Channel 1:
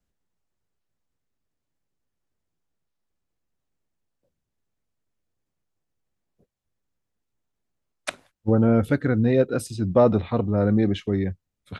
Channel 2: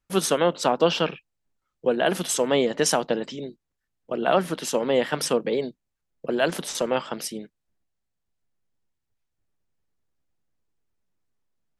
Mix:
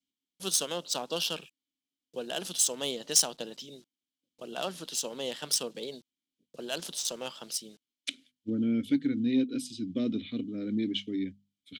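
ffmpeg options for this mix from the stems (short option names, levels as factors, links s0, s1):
-filter_complex "[0:a]asplit=3[s0][s1][s2];[s0]bandpass=f=270:t=q:w=8,volume=1[s3];[s1]bandpass=f=2290:t=q:w=8,volume=0.501[s4];[s2]bandpass=f=3010:t=q:w=8,volume=0.355[s5];[s3][s4][s5]amix=inputs=3:normalize=0,highshelf=f=8500:g=-5.5,bandreject=f=50:t=h:w=6,bandreject=f=100:t=h:w=6,bandreject=f=150:t=h:w=6,bandreject=f=200:t=h:w=6,bandreject=f=250:t=h:w=6,volume=1.26[s6];[1:a]acrusher=bits=8:mix=0:aa=0.000001,adynamicsmooth=sensitivity=2:basefreq=4500,adelay=300,volume=0.178[s7];[s6][s7]amix=inputs=2:normalize=0,highshelf=f=9600:g=9,aexciter=amount=7.9:drive=3.6:freq=3000,asoftclip=type=tanh:threshold=0.355"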